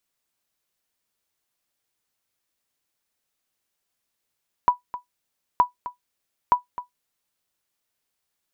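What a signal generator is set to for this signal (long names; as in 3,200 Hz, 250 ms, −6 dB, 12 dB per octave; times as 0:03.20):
ping with an echo 983 Hz, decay 0.13 s, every 0.92 s, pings 3, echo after 0.26 s, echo −15 dB −7.5 dBFS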